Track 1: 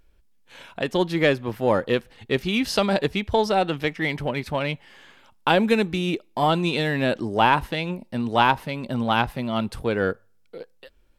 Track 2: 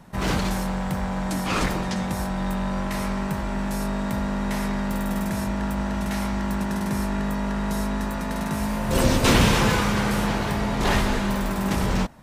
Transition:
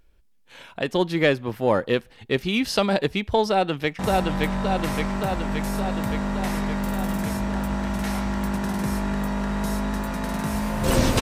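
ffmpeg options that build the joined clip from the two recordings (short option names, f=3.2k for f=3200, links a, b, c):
-filter_complex "[0:a]apad=whole_dur=11.21,atrim=end=11.21,atrim=end=3.992[a];[1:a]atrim=start=2.058:end=9.28[b];[a][b]acrossfade=d=0.004:c1=hsin:c2=hsin,asplit=2[c][d];[d]afade=t=in:st=3.49:d=0.01,afade=t=out:st=3.99:d=0.01,aecho=0:1:570|1140|1710|2280|2850|3420|3990|4560|5130|5700|6270|6840:0.841395|0.588977|0.412284|0.288599|0.202019|0.141413|0.0989893|0.0692925|0.0485048|0.0339533|0.0237673|0.0166371[e];[c][e]amix=inputs=2:normalize=0"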